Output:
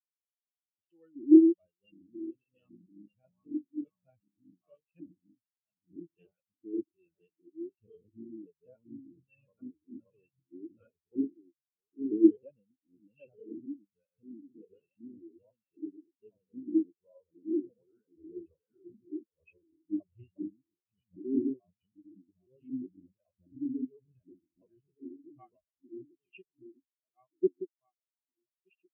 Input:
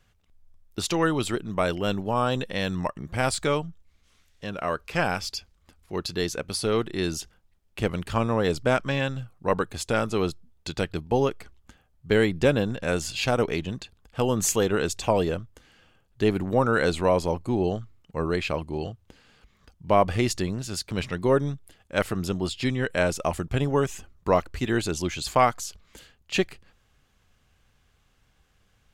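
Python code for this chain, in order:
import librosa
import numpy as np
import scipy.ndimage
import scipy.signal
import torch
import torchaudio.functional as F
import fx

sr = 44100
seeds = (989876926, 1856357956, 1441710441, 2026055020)

y = fx.reverse_delay_fb(x, sr, ms=612, feedback_pct=65, wet_db=0.0)
y = fx.cheby_harmonics(y, sr, harmonics=(4, 5, 8), levels_db=(-19, -23, -33), full_scale_db=-4.5)
y = fx.rider(y, sr, range_db=4, speed_s=2.0)
y = fx.filter_lfo_lowpass(y, sr, shape='square', hz=1.3, low_hz=310.0, high_hz=2900.0, q=4.7)
y = fx.spectral_expand(y, sr, expansion=4.0)
y = y * librosa.db_to_amplitude(-7.0)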